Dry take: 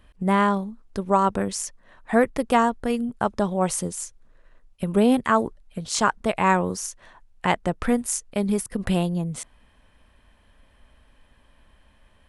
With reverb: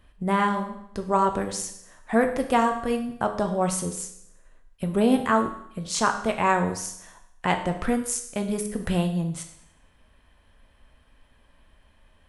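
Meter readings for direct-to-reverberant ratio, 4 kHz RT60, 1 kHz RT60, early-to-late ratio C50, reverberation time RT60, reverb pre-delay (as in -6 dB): 5.0 dB, 0.75 s, 0.75 s, 9.5 dB, 0.75 s, 10 ms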